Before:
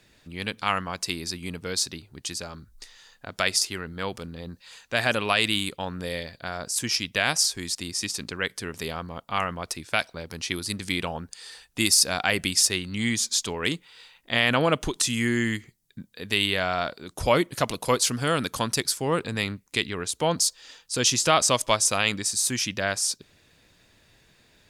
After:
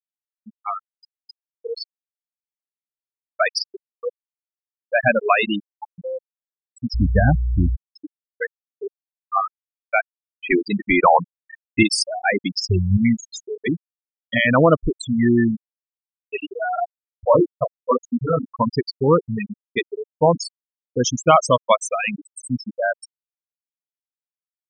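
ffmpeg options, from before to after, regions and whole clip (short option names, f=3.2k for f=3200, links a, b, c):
-filter_complex "[0:a]asettb=1/sr,asplit=3[a][b][c];[a]atrim=end=6.944[d];[b]atrim=start=6.94:end=7.76,asetpts=PTS-STARTPTS,afade=t=in:d=0.004:c=qsin,afade=t=out:st=0.816:d=0.004:c=qsin,aeval=exprs='val(0)+0.00708*(sin(2*PI*60*n/s)+sin(2*PI*2*60*n/s)/2+sin(2*PI*3*60*n/s)/3+sin(2*PI*4*60*n/s)/4+sin(2*PI*5*60*n/s)/5)':c=same,aemphasis=mode=reproduction:type=riaa[e];[c]atrim=start=7.756[f];[d][e]acrossfade=d=0.004:c1=hsin:c2=qsin[g];[g][f]acrossfade=d=0.004:c1=qsin:c2=hsin,asettb=1/sr,asplit=3[h][i][j];[h]atrim=end=10.424[k];[i]atrim=start=10.42:end=11.83,asetpts=PTS-STARTPTS,afade=t=in:d=0.004:c=qsin,afade=t=out:st=1.406:d=0.004:c=qsin,adynamicequalizer=threshold=0.00562:dfrequency=1000:dqfactor=1.3:tfrequency=1000:tqfactor=1.3:attack=5:release=100:ratio=0.375:range=2:mode=boostabove:tftype=bell,asplit=2[l][m];[m]highpass=f=720:p=1,volume=22dB,asoftclip=type=tanh:threshold=-6.5dB[n];[l][n]amix=inputs=2:normalize=0,lowpass=f=1.8k:p=1,volume=-6dB[o];[j]atrim=start=11.826[p];[k][o]acrossfade=d=0.004:c1=hsin:c2=qsin[q];[q][p]acrossfade=d=0.004:c1=qsin:c2=hsin,asettb=1/sr,asplit=3[r][s][t];[r]atrim=end=12.554[u];[s]atrim=start=12.55:end=12.97,asetpts=PTS-STARTPTS,afade=t=in:d=0.004:c=qsin,afade=t=out:st=0.416:d=0.004:c=qsin,adynamicsmooth=sensitivity=8:basefreq=6.3k,equalizer=f=92:t=o:w=1.6:g=11.5[v];[t]atrim=start=12.966[w];[u][v]acrossfade=d=0.004:c1=hsin:c2=qsin[x];[x][w]acrossfade=d=0.004:c1=qsin:c2=hsin,asettb=1/sr,asplit=3[y][z][aa];[y]atrim=end=16.234[ab];[z]atrim=start=16.23:end=18.5,asetpts=PTS-STARTPTS,afade=t=in:d=0.004:c=qsin,afade=t=out:st=2.266:d=0.004:c=qsin,highpass=94,flanger=delay=20:depth=7.5:speed=1.1[ac];[aa]atrim=start=18.496[ad];[ab][ac]acrossfade=d=0.004:c1=hsin:c2=qsin[ae];[ae][ad]acrossfade=d=0.004:c1=qsin:c2=hsin,afftfilt=real='re*gte(hypot(re,im),0.224)':imag='im*gte(hypot(re,im),0.224)':win_size=1024:overlap=0.75,highshelf=f=3.3k:g=-10,dynaudnorm=f=130:g=17:m=12dB"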